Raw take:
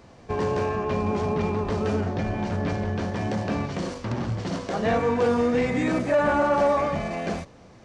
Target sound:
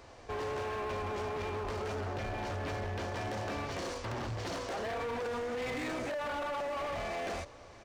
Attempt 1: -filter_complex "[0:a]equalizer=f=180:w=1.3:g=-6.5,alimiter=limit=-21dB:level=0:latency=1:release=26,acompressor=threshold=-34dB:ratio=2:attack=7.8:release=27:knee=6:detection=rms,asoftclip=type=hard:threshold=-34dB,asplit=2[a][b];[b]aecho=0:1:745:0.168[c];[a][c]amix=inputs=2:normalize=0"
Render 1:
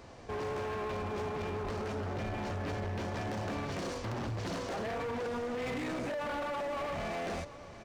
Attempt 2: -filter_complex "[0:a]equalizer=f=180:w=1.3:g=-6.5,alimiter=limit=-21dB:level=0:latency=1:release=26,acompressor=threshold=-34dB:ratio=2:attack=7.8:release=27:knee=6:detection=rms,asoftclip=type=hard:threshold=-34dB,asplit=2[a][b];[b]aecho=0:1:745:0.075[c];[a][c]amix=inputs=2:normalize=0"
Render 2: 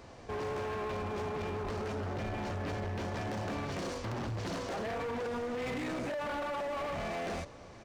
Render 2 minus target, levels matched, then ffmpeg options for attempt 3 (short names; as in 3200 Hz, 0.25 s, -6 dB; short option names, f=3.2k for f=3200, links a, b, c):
250 Hz band +3.0 dB
-filter_complex "[0:a]equalizer=f=180:w=1.3:g=-17,alimiter=limit=-21dB:level=0:latency=1:release=26,acompressor=threshold=-34dB:ratio=2:attack=7.8:release=27:knee=6:detection=rms,asoftclip=type=hard:threshold=-34dB,asplit=2[a][b];[b]aecho=0:1:745:0.075[c];[a][c]amix=inputs=2:normalize=0"